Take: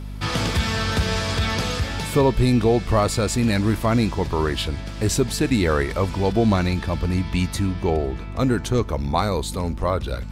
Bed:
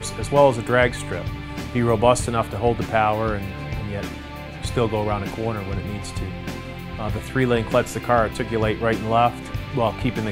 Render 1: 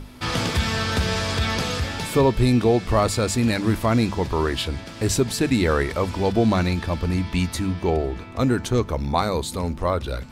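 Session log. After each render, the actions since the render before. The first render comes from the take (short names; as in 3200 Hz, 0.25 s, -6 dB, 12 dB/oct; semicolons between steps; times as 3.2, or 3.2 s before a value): notches 50/100/150/200 Hz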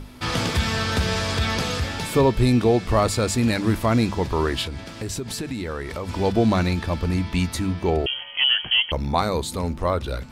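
4.66–6.09 compressor 5:1, threshold -26 dBFS; 8.06–8.92 inverted band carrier 3200 Hz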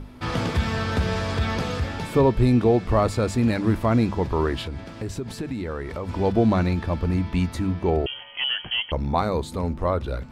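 high shelf 2600 Hz -11.5 dB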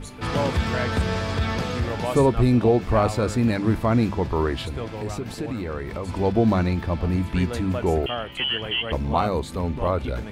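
add bed -12 dB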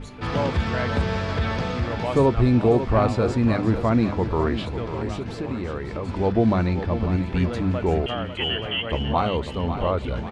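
air absorption 91 m; feedback echo 0.546 s, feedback 43%, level -10 dB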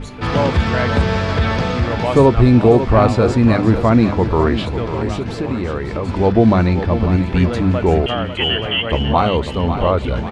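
gain +7.5 dB; limiter -1 dBFS, peak gain reduction 1 dB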